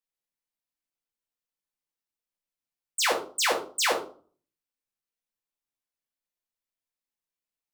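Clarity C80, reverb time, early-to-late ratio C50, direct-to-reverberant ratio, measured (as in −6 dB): 14.0 dB, 0.45 s, 8.5 dB, −1.5 dB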